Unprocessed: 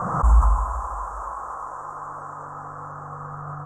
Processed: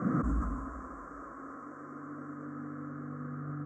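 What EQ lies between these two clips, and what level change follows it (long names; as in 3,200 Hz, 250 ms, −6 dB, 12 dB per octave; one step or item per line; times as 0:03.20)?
formant filter i
high-pass filter 58 Hz
high-shelf EQ 5,700 Hz −11 dB
+16.0 dB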